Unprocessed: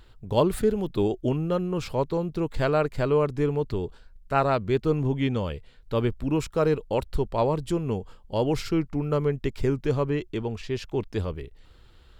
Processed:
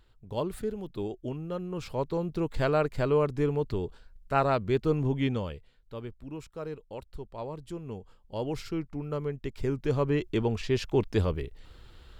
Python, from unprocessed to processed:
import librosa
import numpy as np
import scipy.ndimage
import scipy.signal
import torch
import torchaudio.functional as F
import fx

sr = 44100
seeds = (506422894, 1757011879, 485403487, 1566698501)

y = fx.gain(x, sr, db=fx.line((1.41, -10.0), (2.3, -2.5), (5.29, -2.5), (6.0, -15.0), (7.28, -15.0), (8.44, -8.0), (9.43, -8.0), (10.39, 2.5)))